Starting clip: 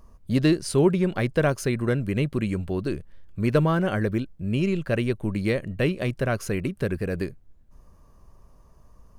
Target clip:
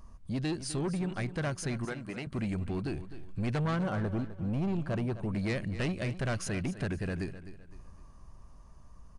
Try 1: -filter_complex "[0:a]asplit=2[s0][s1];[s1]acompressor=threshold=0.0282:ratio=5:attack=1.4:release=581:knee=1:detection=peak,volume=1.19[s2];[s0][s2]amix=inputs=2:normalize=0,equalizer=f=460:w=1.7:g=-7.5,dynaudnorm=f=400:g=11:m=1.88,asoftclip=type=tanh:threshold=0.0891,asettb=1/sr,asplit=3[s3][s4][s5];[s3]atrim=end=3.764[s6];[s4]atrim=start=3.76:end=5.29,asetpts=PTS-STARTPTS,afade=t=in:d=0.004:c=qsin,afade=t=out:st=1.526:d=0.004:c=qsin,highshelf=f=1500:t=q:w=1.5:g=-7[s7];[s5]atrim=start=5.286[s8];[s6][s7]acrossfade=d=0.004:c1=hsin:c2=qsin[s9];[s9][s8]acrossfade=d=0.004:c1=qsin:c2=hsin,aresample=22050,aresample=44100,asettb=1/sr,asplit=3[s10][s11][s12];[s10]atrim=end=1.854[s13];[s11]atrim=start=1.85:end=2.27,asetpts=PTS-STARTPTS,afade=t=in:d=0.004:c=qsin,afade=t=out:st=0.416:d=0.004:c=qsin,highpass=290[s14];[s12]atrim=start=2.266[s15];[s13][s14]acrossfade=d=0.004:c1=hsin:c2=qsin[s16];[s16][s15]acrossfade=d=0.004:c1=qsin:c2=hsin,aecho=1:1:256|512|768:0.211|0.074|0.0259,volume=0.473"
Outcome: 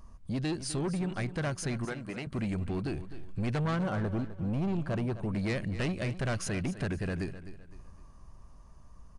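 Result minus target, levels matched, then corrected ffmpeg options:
compression: peak gain reduction -8 dB
-filter_complex "[0:a]asplit=2[s0][s1];[s1]acompressor=threshold=0.00891:ratio=5:attack=1.4:release=581:knee=1:detection=peak,volume=1.19[s2];[s0][s2]amix=inputs=2:normalize=0,equalizer=f=460:w=1.7:g=-7.5,dynaudnorm=f=400:g=11:m=1.88,asoftclip=type=tanh:threshold=0.0891,asettb=1/sr,asplit=3[s3][s4][s5];[s3]atrim=end=3.764[s6];[s4]atrim=start=3.76:end=5.29,asetpts=PTS-STARTPTS,afade=t=in:d=0.004:c=qsin,afade=t=out:st=1.526:d=0.004:c=qsin,highshelf=f=1500:t=q:w=1.5:g=-7[s7];[s5]atrim=start=5.286[s8];[s6][s7]acrossfade=d=0.004:c1=hsin:c2=qsin[s9];[s9][s8]acrossfade=d=0.004:c1=qsin:c2=hsin,aresample=22050,aresample=44100,asettb=1/sr,asplit=3[s10][s11][s12];[s10]atrim=end=1.854[s13];[s11]atrim=start=1.85:end=2.27,asetpts=PTS-STARTPTS,afade=t=in:d=0.004:c=qsin,afade=t=out:st=0.416:d=0.004:c=qsin,highpass=290[s14];[s12]atrim=start=2.266[s15];[s13][s14]acrossfade=d=0.004:c1=hsin:c2=qsin[s16];[s16][s15]acrossfade=d=0.004:c1=qsin:c2=hsin,aecho=1:1:256|512|768:0.211|0.074|0.0259,volume=0.473"

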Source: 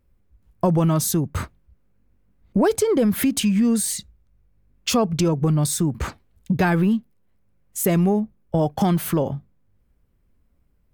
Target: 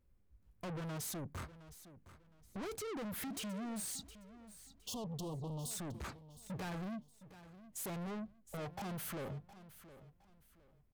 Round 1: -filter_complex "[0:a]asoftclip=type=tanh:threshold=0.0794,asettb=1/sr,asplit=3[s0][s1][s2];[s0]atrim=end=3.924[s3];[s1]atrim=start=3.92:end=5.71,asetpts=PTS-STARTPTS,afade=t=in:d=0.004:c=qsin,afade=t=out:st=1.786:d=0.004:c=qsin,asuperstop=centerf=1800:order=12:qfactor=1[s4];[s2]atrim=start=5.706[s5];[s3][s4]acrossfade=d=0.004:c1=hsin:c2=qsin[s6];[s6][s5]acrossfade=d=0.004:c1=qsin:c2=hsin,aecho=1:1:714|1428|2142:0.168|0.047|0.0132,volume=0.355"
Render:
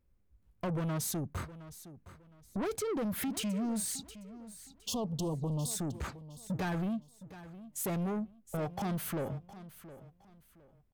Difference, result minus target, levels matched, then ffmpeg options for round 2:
saturation: distortion -5 dB
-filter_complex "[0:a]asoftclip=type=tanh:threshold=0.0251,asettb=1/sr,asplit=3[s0][s1][s2];[s0]atrim=end=3.924[s3];[s1]atrim=start=3.92:end=5.71,asetpts=PTS-STARTPTS,afade=t=in:d=0.004:c=qsin,afade=t=out:st=1.786:d=0.004:c=qsin,asuperstop=centerf=1800:order=12:qfactor=1[s4];[s2]atrim=start=5.706[s5];[s3][s4]acrossfade=d=0.004:c1=hsin:c2=qsin[s6];[s6][s5]acrossfade=d=0.004:c1=qsin:c2=hsin,aecho=1:1:714|1428|2142:0.168|0.047|0.0132,volume=0.355"

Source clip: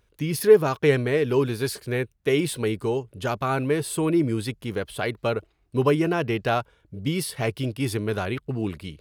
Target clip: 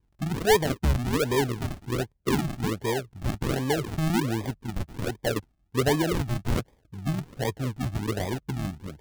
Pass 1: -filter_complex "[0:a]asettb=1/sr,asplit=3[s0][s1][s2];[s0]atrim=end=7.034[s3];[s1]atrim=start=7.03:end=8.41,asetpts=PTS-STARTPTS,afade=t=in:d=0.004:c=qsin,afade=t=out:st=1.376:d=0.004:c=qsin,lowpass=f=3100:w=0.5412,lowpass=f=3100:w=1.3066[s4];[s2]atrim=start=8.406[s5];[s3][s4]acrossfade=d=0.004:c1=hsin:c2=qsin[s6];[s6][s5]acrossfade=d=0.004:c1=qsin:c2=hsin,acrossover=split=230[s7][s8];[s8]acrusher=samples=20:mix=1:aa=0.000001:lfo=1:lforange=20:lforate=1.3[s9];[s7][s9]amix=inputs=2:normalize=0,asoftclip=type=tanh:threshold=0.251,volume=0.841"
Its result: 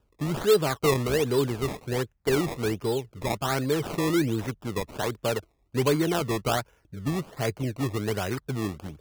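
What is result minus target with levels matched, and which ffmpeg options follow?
decimation with a swept rate: distortion -16 dB
-filter_complex "[0:a]asettb=1/sr,asplit=3[s0][s1][s2];[s0]atrim=end=7.034[s3];[s1]atrim=start=7.03:end=8.41,asetpts=PTS-STARTPTS,afade=t=in:d=0.004:c=qsin,afade=t=out:st=1.376:d=0.004:c=qsin,lowpass=f=3100:w=0.5412,lowpass=f=3100:w=1.3066[s4];[s2]atrim=start=8.406[s5];[s3][s4]acrossfade=d=0.004:c1=hsin:c2=qsin[s6];[s6][s5]acrossfade=d=0.004:c1=qsin:c2=hsin,acrossover=split=230[s7][s8];[s8]acrusher=samples=62:mix=1:aa=0.000001:lfo=1:lforange=62:lforate=1.3[s9];[s7][s9]amix=inputs=2:normalize=0,asoftclip=type=tanh:threshold=0.251,volume=0.841"

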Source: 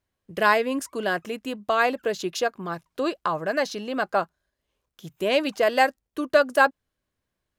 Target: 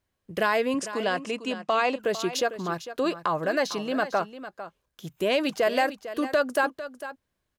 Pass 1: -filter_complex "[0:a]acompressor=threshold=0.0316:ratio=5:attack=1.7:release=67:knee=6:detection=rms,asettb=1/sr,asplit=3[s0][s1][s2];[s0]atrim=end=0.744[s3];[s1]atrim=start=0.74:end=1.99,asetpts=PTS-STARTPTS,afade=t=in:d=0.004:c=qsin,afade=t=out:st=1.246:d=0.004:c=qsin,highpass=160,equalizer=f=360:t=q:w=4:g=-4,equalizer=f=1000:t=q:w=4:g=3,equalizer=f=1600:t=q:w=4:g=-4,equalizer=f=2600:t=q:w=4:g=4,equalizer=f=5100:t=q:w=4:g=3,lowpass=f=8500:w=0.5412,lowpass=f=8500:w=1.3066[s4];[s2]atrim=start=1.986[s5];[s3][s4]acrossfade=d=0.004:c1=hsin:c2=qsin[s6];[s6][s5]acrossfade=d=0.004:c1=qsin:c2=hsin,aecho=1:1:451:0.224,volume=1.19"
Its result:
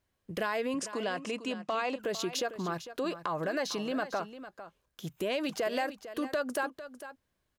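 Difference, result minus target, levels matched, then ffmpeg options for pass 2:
compression: peak gain reduction +9 dB
-filter_complex "[0:a]acompressor=threshold=0.112:ratio=5:attack=1.7:release=67:knee=6:detection=rms,asettb=1/sr,asplit=3[s0][s1][s2];[s0]atrim=end=0.744[s3];[s1]atrim=start=0.74:end=1.99,asetpts=PTS-STARTPTS,afade=t=in:d=0.004:c=qsin,afade=t=out:st=1.246:d=0.004:c=qsin,highpass=160,equalizer=f=360:t=q:w=4:g=-4,equalizer=f=1000:t=q:w=4:g=3,equalizer=f=1600:t=q:w=4:g=-4,equalizer=f=2600:t=q:w=4:g=4,equalizer=f=5100:t=q:w=4:g=3,lowpass=f=8500:w=0.5412,lowpass=f=8500:w=1.3066[s4];[s2]atrim=start=1.986[s5];[s3][s4]acrossfade=d=0.004:c1=hsin:c2=qsin[s6];[s6][s5]acrossfade=d=0.004:c1=qsin:c2=hsin,aecho=1:1:451:0.224,volume=1.19"

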